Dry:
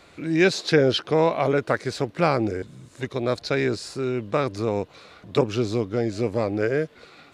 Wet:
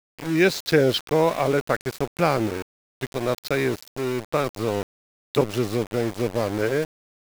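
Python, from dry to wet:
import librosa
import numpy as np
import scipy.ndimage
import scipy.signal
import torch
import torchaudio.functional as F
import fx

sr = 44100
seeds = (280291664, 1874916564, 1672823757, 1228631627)

y = np.where(np.abs(x) >= 10.0 ** (-28.5 / 20.0), x, 0.0)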